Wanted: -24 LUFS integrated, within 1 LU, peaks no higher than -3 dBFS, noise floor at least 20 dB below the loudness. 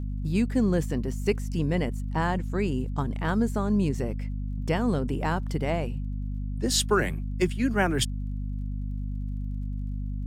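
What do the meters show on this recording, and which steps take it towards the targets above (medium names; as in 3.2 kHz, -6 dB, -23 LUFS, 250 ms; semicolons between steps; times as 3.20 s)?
tick rate 32 per s; hum 50 Hz; highest harmonic 250 Hz; hum level -29 dBFS; loudness -28.0 LUFS; peak level -10.5 dBFS; loudness target -24.0 LUFS
-> de-click; hum notches 50/100/150/200/250 Hz; trim +4 dB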